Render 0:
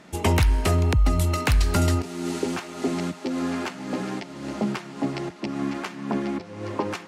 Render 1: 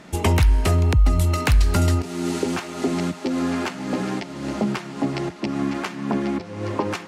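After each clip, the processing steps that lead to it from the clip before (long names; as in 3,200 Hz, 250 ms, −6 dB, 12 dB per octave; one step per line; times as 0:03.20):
low-shelf EQ 86 Hz +6 dB
in parallel at +3 dB: downward compressor, threshold −24 dBFS, peak gain reduction 12.5 dB
on the sum: level −3.5 dB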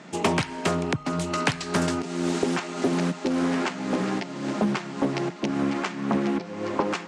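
elliptic band-pass filter 150–7,900 Hz, stop band 40 dB
highs frequency-modulated by the lows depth 0.38 ms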